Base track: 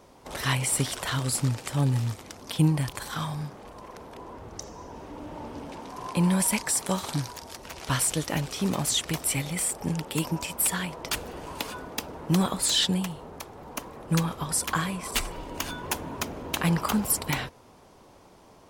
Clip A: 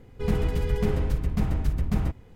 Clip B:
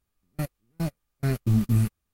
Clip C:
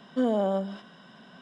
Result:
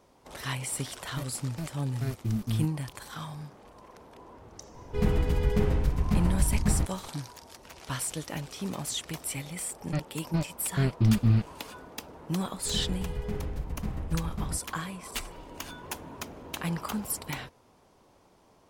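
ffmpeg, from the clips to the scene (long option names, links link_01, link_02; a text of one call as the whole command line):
ffmpeg -i bed.wav -i cue0.wav -i cue1.wav -filter_complex "[2:a]asplit=2[link_01][link_02];[1:a]asplit=2[link_03][link_04];[0:a]volume=-7.5dB[link_05];[link_02]aresample=11025,aresample=44100[link_06];[link_01]atrim=end=2.13,asetpts=PTS-STARTPTS,volume=-8dB,afade=type=in:duration=0.004:curve=hsin,afade=type=out:start_time=2.126:duration=0.004:curve=hsin,adelay=780[link_07];[link_03]atrim=end=2.35,asetpts=PTS-STARTPTS,volume=-0.5dB,afade=type=in:duration=0.004:curve=hsin,afade=type=out:start_time=2.346:duration=0.004:curve=hsin,adelay=4740[link_08];[link_06]atrim=end=2.13,asetpts=PTS-STARTPTS,volume=-0.5dB,afade=type=in:duration=0.004:curve=hsin,afade=type=out:start_time=2.126:duration=0.004:curve=hsin,adelay=420714S[link_09];[link_04]atrim=end=2.35,asetpts=PTS-STARTPTS,volume=-9dB,afade=type=in:duration=0.004:curve=hsin,afade=type=out:start_time=2.346:duration=0.004:curve=hsin,adelay=12460[link_10];[link_05][link_07][link_08][link_09][link_10]amix=inputs=5:normalize=0" out.wav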